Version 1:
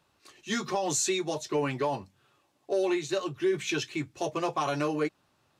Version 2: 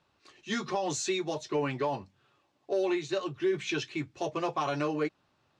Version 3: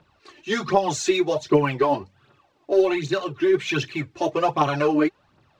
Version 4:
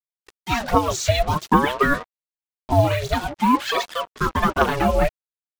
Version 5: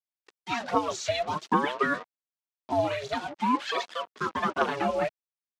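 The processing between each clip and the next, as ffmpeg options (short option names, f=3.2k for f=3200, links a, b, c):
-af "lowpass=5.5k,volume=-1.5dB"
-af "highshelf=f=3.8k:g=-7.5,aphaser=in_gain=1:out_gain=1:delay=3.5:decay=0.6:speed=1.3:type=triangular,volume=8.5dB"
-af "agate=range=-33dB:threshold=-47dB:ratio=3:detection=peak,acrusher=bits=5:mix=0:aa=0.5,aeval=exprs='val(0)*sin(2*PI*550*n/s+550*0.55/0.51*sin(2*PI*0.51*n/s))':c=same,volume=4.5dB"
-af "highpass=210,lowpass=6.5k,volume=-7dB"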